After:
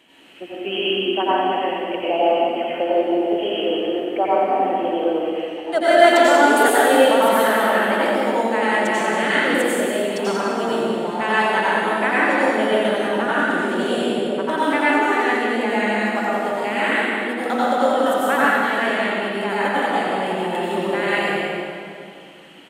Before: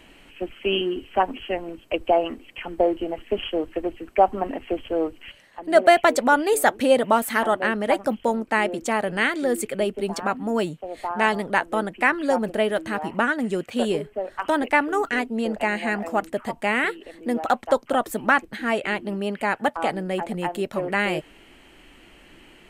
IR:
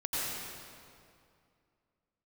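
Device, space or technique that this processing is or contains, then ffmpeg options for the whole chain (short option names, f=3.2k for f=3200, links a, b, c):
PA in a hall: -filter_complex "[0:a]highpass=190,equalizer=f=3.4k:t=o:w=0.32:g=6.5,aecho=1:1:185:0.376[a];[1:a]atrim=start_sample=2205[b];[a][b]afir=irnorm=-1:irlink=0,volume=-3dB"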